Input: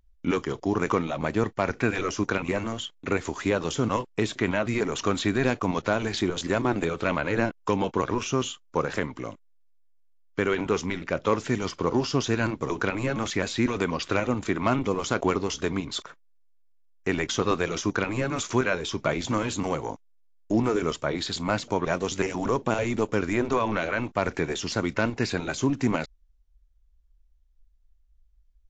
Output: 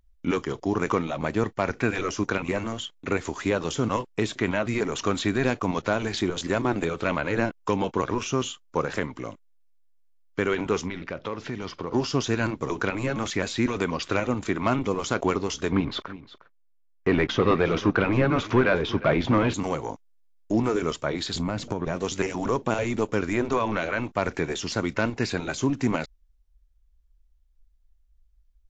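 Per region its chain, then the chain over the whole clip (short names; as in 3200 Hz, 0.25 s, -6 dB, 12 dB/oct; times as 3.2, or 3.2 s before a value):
10.88–11.93 LPF 5300 Hz 24 dB/oct + compressor 2.5:1, threshold -30 dBFS
15.72–19.54 sample leveller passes 2 + air absorption 290 m + echo 0.357 s -17 dB
21.34–21.96 low shelf 470 Hz +10 dB + compressor, threshold -23 dBFS
whole clip: dry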